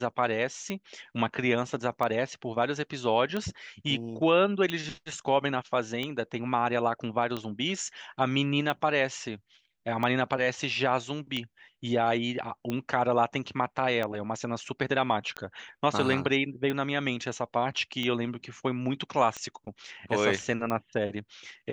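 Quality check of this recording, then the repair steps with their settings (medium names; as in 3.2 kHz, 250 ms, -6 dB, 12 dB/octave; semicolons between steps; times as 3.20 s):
tick 45 rpm -18 dBFS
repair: de-click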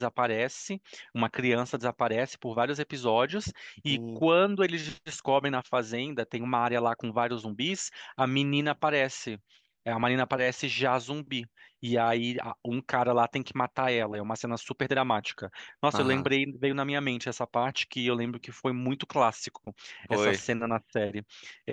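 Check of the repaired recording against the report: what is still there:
nothing left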